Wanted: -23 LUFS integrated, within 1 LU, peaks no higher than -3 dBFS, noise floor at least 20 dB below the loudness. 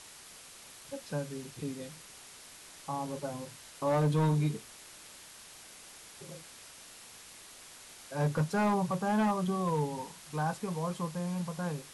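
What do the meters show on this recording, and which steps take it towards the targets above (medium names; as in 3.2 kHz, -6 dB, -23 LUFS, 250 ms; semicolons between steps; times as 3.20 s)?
clipped samples 1.0%; clipping level -23.0 dBFS; noise floor -52 dBFS; noise floor target -53 dBFS; loudness -33.0 LUFS; peak level -23.0 dBFS; loudness target -23.0 LUFS
-> clip repair -23 dBFS; noise reduction 6 dB, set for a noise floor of -52 dBFS; trim +10 dB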